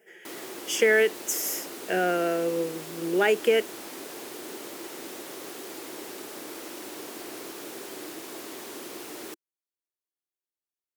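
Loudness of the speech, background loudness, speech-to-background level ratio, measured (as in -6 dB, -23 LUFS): -25.5 LUFS, -38.5 LUFS, 13.0 dB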